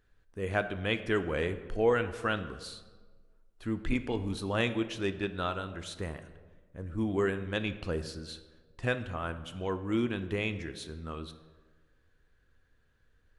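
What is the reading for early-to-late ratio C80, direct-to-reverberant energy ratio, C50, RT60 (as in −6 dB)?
14.0 dB, 10.0 dB, 12.5 dB, 1.4 s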